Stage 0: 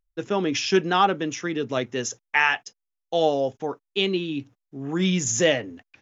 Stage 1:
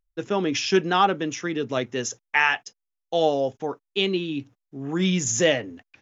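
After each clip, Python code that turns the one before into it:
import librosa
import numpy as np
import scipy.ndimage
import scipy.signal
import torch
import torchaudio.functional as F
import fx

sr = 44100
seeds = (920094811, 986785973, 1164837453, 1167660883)

y = x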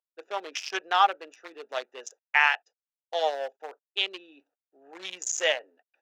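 y = fx.wiener(x, sr, points=41)
y = scipy.signal.sosfilt(scipy.signal.butter(4, 630.0, 'highpass', fs=sr, output='sos'), y)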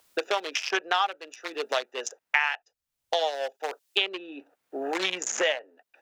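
y = fx.band_squash(x, sr, depth_pct=100)
y = y * 10.0 ** (1.5 / 20.0)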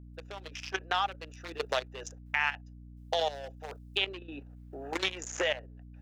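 y = fx.fade_in_head(x, sr, length_s=1.25)
y = fx.level_steps(y, sr, step_db=14)
y = fx.add_hum(y, sr, base_hz=60, snr_db=13)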